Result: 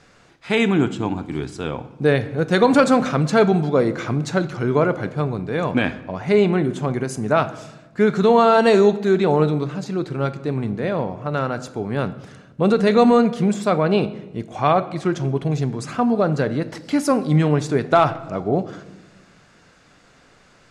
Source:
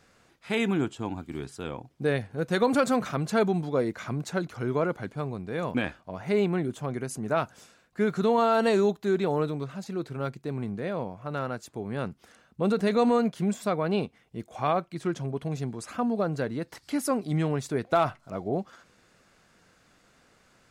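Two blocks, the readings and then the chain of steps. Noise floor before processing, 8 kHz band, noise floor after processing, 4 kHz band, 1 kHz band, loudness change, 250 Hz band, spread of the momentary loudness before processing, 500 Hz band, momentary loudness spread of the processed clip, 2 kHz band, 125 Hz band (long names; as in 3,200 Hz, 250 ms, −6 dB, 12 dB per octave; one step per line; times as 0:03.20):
−63 dBFS, +5.5 dB, −53 dBFS, +8.5 dB, +9.0 dB, +9.0 dB, +9.0 dB, 11 LU, +9.0 dB, 12 LU, +9.0 dB, +10.0 dB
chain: low-pass filter 7,600 Hz 12 dB per octave
rectangular room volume 540 cubic metres, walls mixed, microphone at 0.34 metres
level +8.5 dB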